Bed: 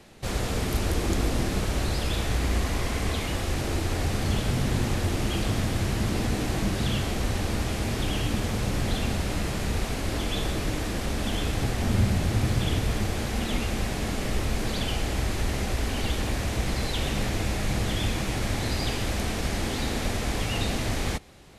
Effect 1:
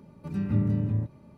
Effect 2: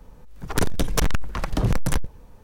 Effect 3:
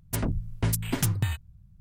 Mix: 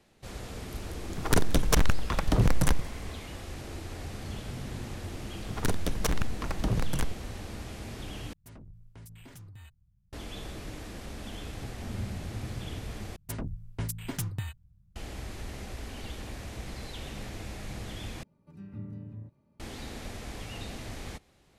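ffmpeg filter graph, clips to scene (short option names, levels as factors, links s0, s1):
-filter_complex "[2:a]asplit=2[s0][s1];[3:a]asplit=2[s2][s3];[0:a]volume=0.237[s4];[s0]aecho=1:1:178:0.0668[s5];[s2]acompressor=threshold=0.0282:ratio=4:attack=0.12:release=24:knee=1:detection=rms[s6];[s4]asplit=4[s7][s8][s9][s10];[s7]atrim=end=8.334[s11];[s6]atrim=end=1.8,asetpts=PTS-STARTPTS,volume=0.188[s12];[s8]atrim=start=10.126:end=13.164[s13];[s3]atrim=end=1.8,asetpts=PTS-STARTPTS,volume=0.398[s14];[s9]atrim=start=14.956:end=18.234[s15];[1:a]atrim=end=1.37,asetpts=PTS-STARTPTS,volume=0.158[s16];[s10]atrim=start=19.596[s17];[s5]atrim=end=2.43,asetpts=PTS-STARTPTS,volume=0.841,afade=t=in:d=0.004:c=hsin,afade=t=out:st=2.426:d=0.004:c=hsin,adelay=750[s18];[s1]atrim=end=2.43,asetpts=PTS-STARTPTS,volume=0.447,afade=t=in:d=0.004:c=hsin,afade=t=out:st=2.426:d=0.004:c=hsin,adelay=5070[s19];[s11][s12]acrossfade=d=0.004:c1=hsin:c2=hsin[s20];[s20][s13]acrossfade=d=0.004:c1=hsin:c2=hsin[s21];[s21][s14]acrossfade=d=0.004:c1=hsin:c2=hsin[s22];[s22][s15]acrossfade=d=0.004:c1=hsin:c2=hsin[s23];[s23][s16]acrossfade=d=0.004:c1=hsin:c2=hsin[s24];[s24][s17]acrossfade=d=0.004:c1=hsin:c2=hsin[s25];[s25][s18][s19]amix=inputs=3:normalize=0"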